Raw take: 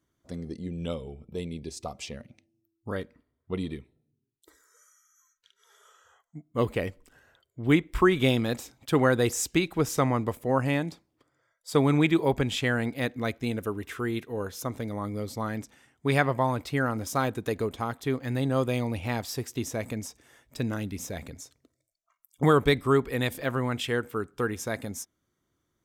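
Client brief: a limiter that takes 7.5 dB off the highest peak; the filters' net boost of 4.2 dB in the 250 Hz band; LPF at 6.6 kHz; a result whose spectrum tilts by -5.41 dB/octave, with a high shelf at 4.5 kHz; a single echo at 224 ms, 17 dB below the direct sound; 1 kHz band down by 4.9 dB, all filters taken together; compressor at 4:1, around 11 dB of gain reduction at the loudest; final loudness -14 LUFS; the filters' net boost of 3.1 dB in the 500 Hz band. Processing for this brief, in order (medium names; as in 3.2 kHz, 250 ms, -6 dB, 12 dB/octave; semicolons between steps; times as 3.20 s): low-pass 6.6 kHz; peaking EQ 250 Hz +4.5 dB; peaking EQ 500 Hz +4 dB; peaking EQ 1 kHz -8.5 dB; treble shelf 4.5 kHz +4.5 dB; compression 4:1, threshold -27 dBFS; peak limiter -23.5 dBFS; delay 224 ms -17 dB; trim +20.5 dB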